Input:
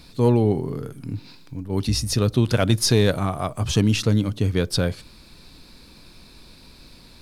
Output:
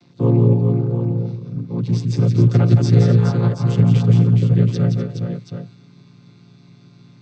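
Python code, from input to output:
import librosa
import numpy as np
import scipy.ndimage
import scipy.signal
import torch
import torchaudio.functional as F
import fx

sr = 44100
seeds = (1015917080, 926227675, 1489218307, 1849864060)

p1 = fx.chord_vocoder(x, sr, chord='minor triad', root=46)
p2 = p1 + fx.echo_multitap(p1, sr, ms=(171, 250, 419, 728), db=(-5.5, -14.0, -6.0, -9.0), dry=0)
y = p2 * librosa.db_to_amplitude(3.5)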